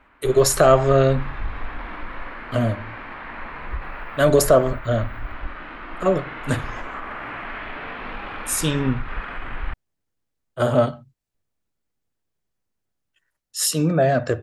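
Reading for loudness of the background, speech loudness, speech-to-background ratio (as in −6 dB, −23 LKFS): −34.0 LKFS, −20.0 LKFS, 14.0 dB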